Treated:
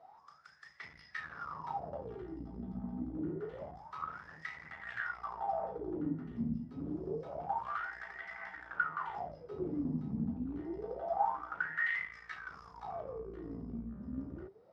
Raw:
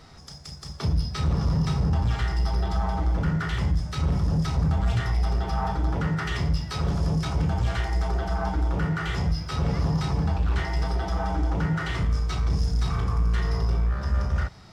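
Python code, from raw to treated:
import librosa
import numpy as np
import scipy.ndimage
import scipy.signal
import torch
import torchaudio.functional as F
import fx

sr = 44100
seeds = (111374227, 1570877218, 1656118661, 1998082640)

y = fx.cheby_harmonics(x, sr, harmonics=(2,), levels_db=(-11,), full_scale_db=-13.5)
y = fx.wah_lfo(y, sr, hz=0.27, low_hz=230.0, high_hz=2000.0, q=15.0)
y = F.gain(torch.from_numpy(y), 8.0).numpy()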